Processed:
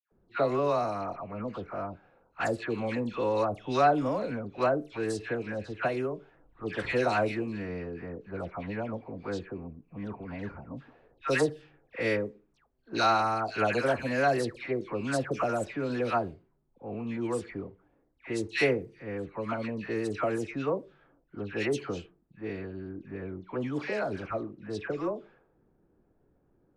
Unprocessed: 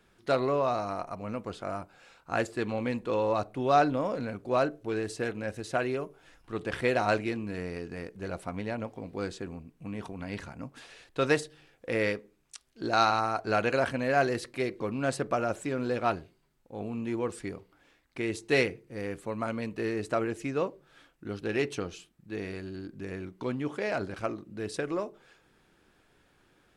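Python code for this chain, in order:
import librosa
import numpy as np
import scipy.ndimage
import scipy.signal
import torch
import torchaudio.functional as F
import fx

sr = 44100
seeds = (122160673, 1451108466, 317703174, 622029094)

y = fx.dispersion(x, sr, late='lows', ms=117.0, hz=1500.0)
y = fx.env_lowpass(y, sr, base_hz=530.0, full_db=-26.0)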